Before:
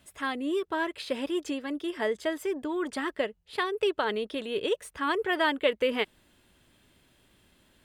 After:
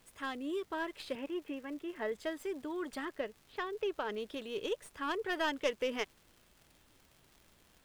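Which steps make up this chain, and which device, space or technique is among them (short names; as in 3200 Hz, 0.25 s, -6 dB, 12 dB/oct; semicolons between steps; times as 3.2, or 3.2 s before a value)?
1.15–2.12 elliptic band-pass 130–2700 Hz; 3.05–4.18 air absorption 230 m; record under a worn stylus (tracing distortion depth 0.06 ms; crackle 150/s -42 dBFS; pink noise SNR 29 dB); gain -8 dB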